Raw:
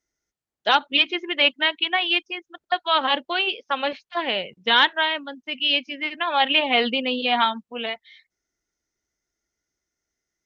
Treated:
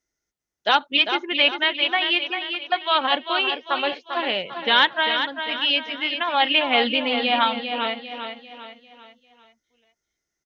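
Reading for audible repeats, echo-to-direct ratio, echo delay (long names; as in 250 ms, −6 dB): 4, −6.5 dB, 397 ms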